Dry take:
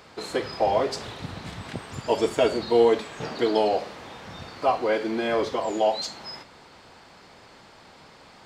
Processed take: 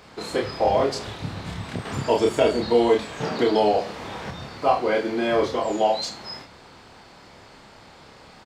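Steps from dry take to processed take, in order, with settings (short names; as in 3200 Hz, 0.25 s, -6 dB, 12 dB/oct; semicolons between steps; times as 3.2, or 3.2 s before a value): low shelf 200 Hz +4.5 dB; doubler 29 ms -2.5 dB; 1.85–4.31 three-band squash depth 40%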